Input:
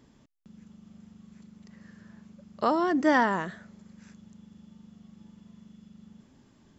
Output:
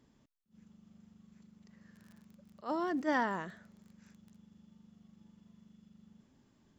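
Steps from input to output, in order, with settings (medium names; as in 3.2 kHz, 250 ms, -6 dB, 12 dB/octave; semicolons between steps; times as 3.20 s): 1.94–4.35 s: crackle 65 per s -> 18 per s -40 dBFS; attacks held to a fixed rise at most 260 dB/s; trim -8.5 dB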